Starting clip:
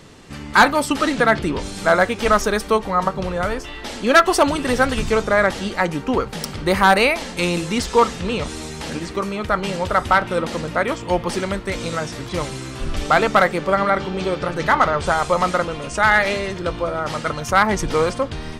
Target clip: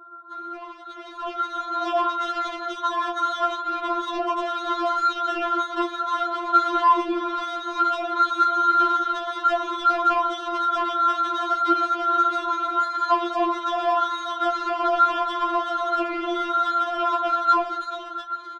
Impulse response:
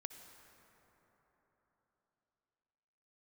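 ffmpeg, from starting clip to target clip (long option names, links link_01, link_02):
-filter_complex "[0:a]asoftclip=type=hard:threshold=-22.5dB,aphaser=in_gain=1:out_gain=1:delay=4.9:decay=0.25:speed=0.35:type=triangular,lowpass=frequency=2300:width_type=q:width=0.5098,lowpass=frequency=2300:width_type=q:width=0.6013,lowpass=frequency=2300:width_type=q:width=0.9,lowpass=frequency=2300:width_type=q:width=2.563,afreqshift=-2700,asplit=2[link_01][link_02];[link_02]aecho=0:1:82:0.211[link_03];[link_01][link_03]amix=inputs=2:normalize=0,acompressor=threshold=-28dB:ratio=6,highpass=290,asoftclip=type=tanh:threshold=-29.5dB,equalizer=frequency=380:width_type=o:width=0.64:gain=13.5,asetrate=23361,aresample=44100,atempo=1.88775,dynaudnorm=framelen=310:gausssize=9:maxgain=15dB,afftfilt=real='re*4*eq(mod(b,16),0)':imag='im*4*eq(mod(b,16),0)':win_size=2048:overlap=0.75"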